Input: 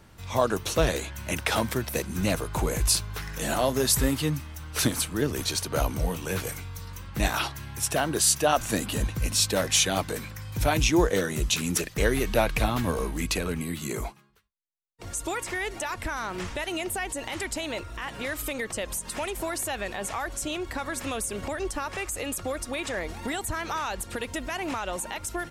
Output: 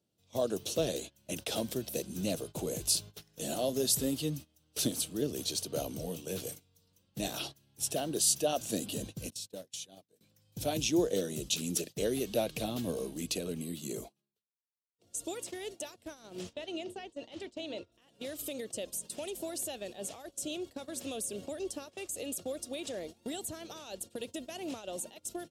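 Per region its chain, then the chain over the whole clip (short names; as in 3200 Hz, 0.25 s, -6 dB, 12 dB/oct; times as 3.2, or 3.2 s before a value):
9.3–10.21 expander -22 dBFS + compressor 16:1, threshold -31 dBFS
16.53–17.92 LPF 4300 Hz + notches 60/120/180/240/300/360/420/480/540 Hz
whole clip: HPF 160 Hz 12 dB/oct; band shelf 1400 Hz -14.5 dB; gate -37 dBFS, range -18 dB; gain -5.5 dB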